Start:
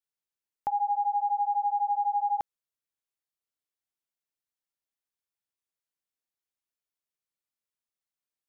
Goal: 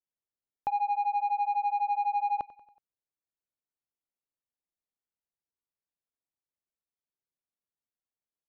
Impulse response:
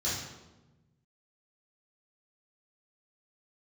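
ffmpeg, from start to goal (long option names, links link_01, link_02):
-af "adynamicsmooth=sensitivity=1.5:basefreq=1100,aecho=1:1:93|186|279|372:0.112|0.0606|0.0327|0.0177"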